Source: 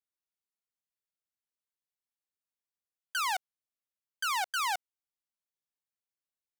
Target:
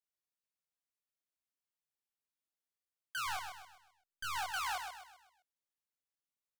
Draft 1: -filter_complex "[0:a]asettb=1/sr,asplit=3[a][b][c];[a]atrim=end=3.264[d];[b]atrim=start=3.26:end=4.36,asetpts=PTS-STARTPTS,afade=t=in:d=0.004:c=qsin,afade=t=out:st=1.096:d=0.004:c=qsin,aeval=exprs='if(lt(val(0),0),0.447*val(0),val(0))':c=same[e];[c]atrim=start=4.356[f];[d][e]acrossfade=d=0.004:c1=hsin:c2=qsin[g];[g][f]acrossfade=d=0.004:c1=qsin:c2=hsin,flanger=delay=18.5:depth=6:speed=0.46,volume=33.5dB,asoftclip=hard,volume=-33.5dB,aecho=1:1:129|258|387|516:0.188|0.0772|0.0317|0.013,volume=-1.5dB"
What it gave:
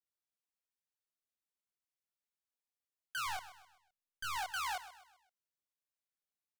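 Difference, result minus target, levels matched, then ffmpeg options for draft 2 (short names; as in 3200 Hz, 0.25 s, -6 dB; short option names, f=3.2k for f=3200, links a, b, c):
echo-to-direct -8 dB
-filter_complex "[0:a]asettb=1/sr,asplit=3[a][b][c];[a]atrim=end=3.264[d];[b]atrim=start=3.26:end=4.36,asetpts=PTS-STARTPTS,afade=t=in:d=0.004:c=qsin,afade=t=out:st=1.096:d=0.004:c=qsin,aeval=exprs='if(lt(val(0),0),0.447*val(0),val(0))':c=same[e];[c]atrim=start=4.356[f];[d][e]acrossfade=d=0.004:c1=hsin:c2=qsin[g];[g][f]acrossfade=d=0.004:c1=qsin:c2=hsin,flanger=delay=18.5:depth=6:speed=0.46,volume=33.5dB,asoftclip=hard,volume=-33.5dB,aecho=1:1:129|258|387|516|645:0.473|0.194|0.0795|0.0326|0.0134,volume=-1.5dB"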